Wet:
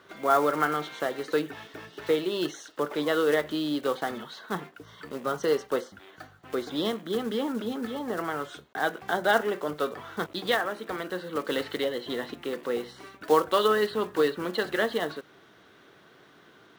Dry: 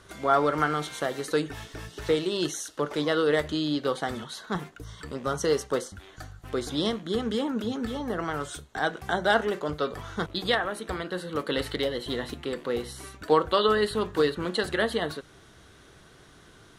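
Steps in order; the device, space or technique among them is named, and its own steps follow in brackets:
early digital voice recorder (band-pass filter 210–3,600 Hz; one scale factor per block 5 bits)

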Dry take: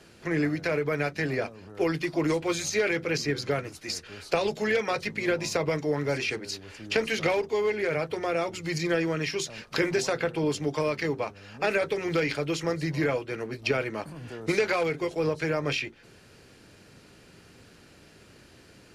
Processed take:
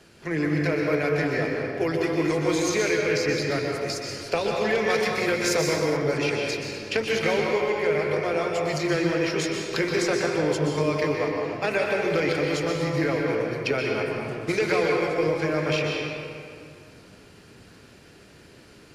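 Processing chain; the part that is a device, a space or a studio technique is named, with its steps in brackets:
stairwell (convolution reverb RT60 2.3 s, pre-delay 118 ms, DRR −0.5 dB)
0:04.90–0:05.97: high-shelf EQ 5,300 Hz +10 dB

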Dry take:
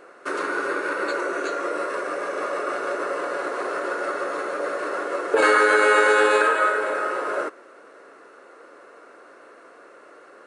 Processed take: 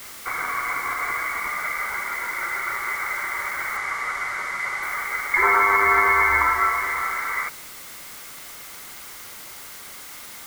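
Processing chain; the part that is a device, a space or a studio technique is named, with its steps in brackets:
scrambled radio voice (band-pass filter 340–2,900 Hz; voice inversion scrambler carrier 2,600 Hz; white noise bed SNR 15 dB)
0:03.77–0:04.83: low-pass filter 9,000 Hz 12 dB per octave

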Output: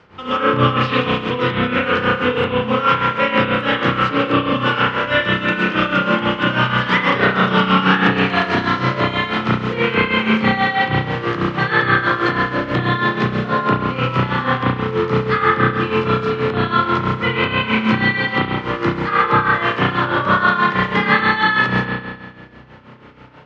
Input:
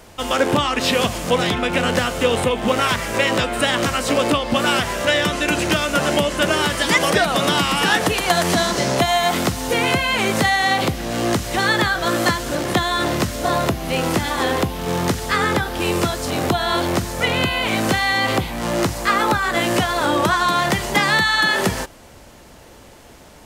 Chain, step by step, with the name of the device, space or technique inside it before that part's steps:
combo amplifier with spring reverb and tremolo (spring reverb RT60 1.5 s, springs 32 ms, chirp 40 ms, DRR −7 dB; amplitude tremolo 6.2 Hz, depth 68%; loudspeaker in its box 89–4,100 Hz, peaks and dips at 130 Hz +10 dB, 660 Hz −10 dB, 1,300 Hz +5 dB, 3,700 Hz −4 dB)
level −2.5 dB

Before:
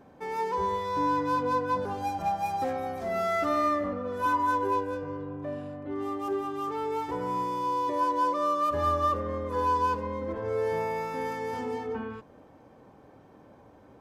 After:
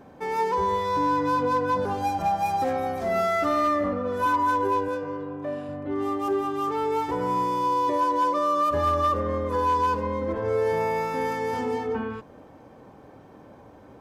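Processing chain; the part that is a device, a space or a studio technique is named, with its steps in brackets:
0:04.88–0:05.69: high-pass filter 250 Hz 6 dB per octave
clipper into limiter (hard clipping −19.5 dBFS, distortion −31 dB; brickwall limiter −22 dBFS, peak gain reduction 2.5 dB)
level +5.5 dB

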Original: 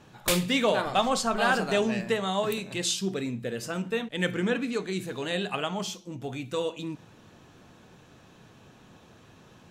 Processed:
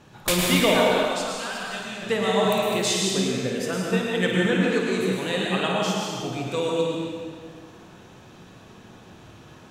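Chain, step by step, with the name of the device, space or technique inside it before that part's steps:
0:00.83–0:02.02: guitar amp tone stack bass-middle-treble 5-5-5
tunnel (flutter between parallel walls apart 9.3 metres, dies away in 0.37 s; convolution reverb RT60 2.0 s, pre-delay 100 ms, DRR −2 dB)
level +2 dB

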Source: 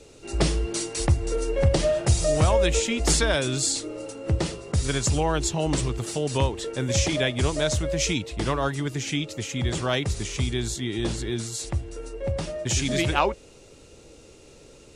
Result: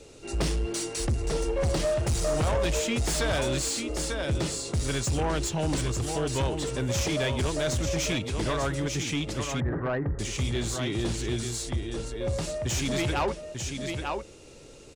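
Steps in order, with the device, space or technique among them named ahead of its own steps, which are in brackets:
single-tap delay 894 ms −8 dB
0:09.60–0:10.19: Chebyshev low-pass filter 1,900 Hz, order 8
saturation between pre-emphasis and de-emphasis (high-shelf EQ 5,800 Hz +9.5 dB; soft clipping −21.5 dBFS, distortion −10 dB; high-shelf EQ 5,800 Hz −9.5 dB)

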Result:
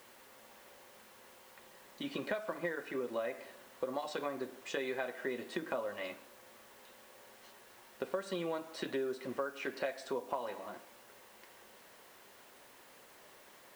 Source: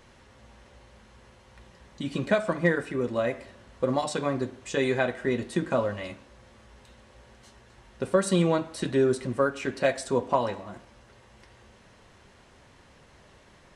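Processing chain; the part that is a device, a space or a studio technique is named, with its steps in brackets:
baby monitor (band-pass filter 350–4,400 Hz; downward compressor, threshold −32 dBFS, peak gain reduction 13.5 dB; white noise bed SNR 21 dB)
level −2 dB

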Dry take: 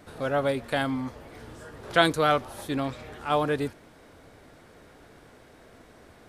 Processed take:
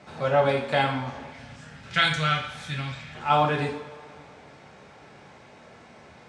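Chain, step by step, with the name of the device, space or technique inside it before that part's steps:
0:01.28–0:03.15: flat-topped bell 540 Hz −14 dB 2.4 octaves
car door speaker (loudspeaker in its box 83–7,300 Hz, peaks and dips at 330 Hz −8 dB, 890 Hz +5 dB, 2,400 Hz +4 dB)
coupled-rooms reverb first 0.52 s, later 2.6 s, from −19 dB, DRR −1.5 dB

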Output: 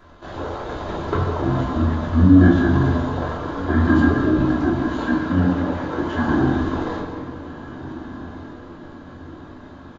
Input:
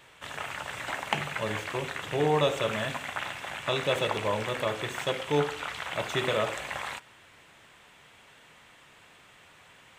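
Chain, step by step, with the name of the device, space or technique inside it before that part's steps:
0:04.38–0:06.25: high-pass filter 260 Hz 6 dB per octave
monster voice (pitch shifter −8.5 semitones; formants moved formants −4.5 semitones; low-shelf EQ 230 Hz +8 dB; convolution reverb RT60 2.0 s, pre-delay 113 ms, DRR 5.5 dB)
feedback delay with all-pass diffusion 1,530 ms, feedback 50%, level −15 dB
rectangular room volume 320 cubic metres, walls furnished, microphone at 3 metres

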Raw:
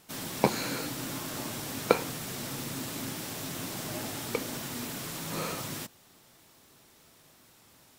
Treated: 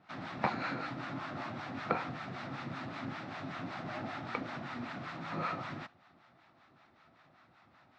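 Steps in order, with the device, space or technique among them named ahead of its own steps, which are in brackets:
guitar amplifier with harmonic tremolo (two-band tremolo in antiphase 5.2 Hz, depth 70%, crossover 680 Hz; soft clipping −21.5 dBFS, distortion −8 dB; loudspeaker in its box 78–3,500 Hz, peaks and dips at 440 Hz −9 dB, 730 Hz +7 dB, 1,300 Hz +8 dB, 1,900 Hz +3 dB, 3,100 Hz −7 dB)

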